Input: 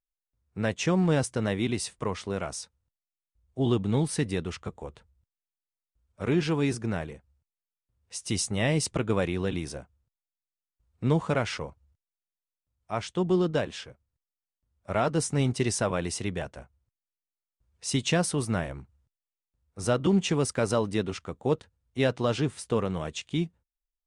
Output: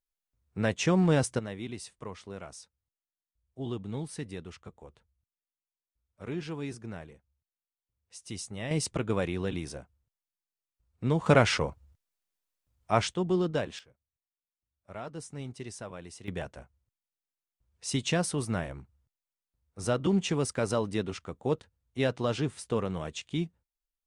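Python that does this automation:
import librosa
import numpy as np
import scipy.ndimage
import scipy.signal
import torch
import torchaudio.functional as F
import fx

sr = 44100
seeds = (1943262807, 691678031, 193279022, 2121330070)

y = fx.gain(x, sr, db=fx.steps((0.0, 0.0), (1.39, -10.5), (8.71, -3.0), (11.26, 6.0), (13.14, -3.0), (13.79, -14.5), (16.28, -3.0)))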